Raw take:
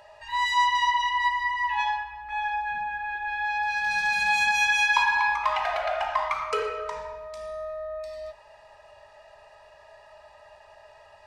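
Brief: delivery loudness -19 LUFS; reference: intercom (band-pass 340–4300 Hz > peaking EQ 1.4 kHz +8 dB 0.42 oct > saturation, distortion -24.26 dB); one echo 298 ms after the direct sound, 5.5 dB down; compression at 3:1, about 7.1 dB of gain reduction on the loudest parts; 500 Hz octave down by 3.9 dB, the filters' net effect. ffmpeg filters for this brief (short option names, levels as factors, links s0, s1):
-af "equalizer=f=500:t=o:g=-5,acompressor=threshold=0.0447:ratio=3,highpass=340,lowpass=4300,equalizer=f=1400:t=o:w=0.42:g=8,aecho=1:1:298:0.531,asoftclip=threshold=0.141,volume=2.82"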